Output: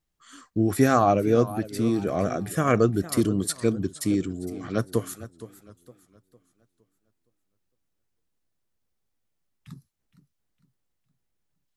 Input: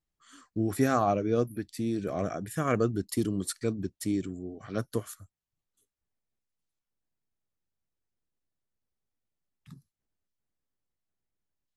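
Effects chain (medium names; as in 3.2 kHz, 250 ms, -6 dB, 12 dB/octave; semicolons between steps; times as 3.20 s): on a send at -23 dB: reverberation, pre-delay 3 ms; on the sum: modulated delay 461 ms, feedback 38%, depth 162 cents, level -16 dB; trim +6 dB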